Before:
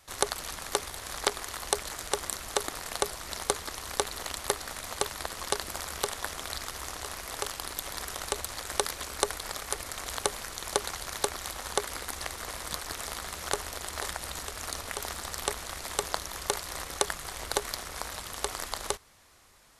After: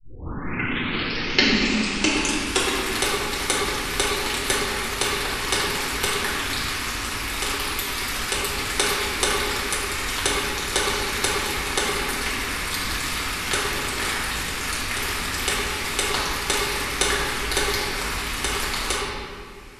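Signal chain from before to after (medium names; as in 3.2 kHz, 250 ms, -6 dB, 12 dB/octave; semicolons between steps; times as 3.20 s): tape start-up on the opening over 2.76 s; fifteen-band graphic EQ 250 Hz +5 dB, 630 Hz -11 dB, 2.5 kHz +8 dB; reverberation RT60 2.2 s, pre-delay 5 ms, DRR -8.5 dB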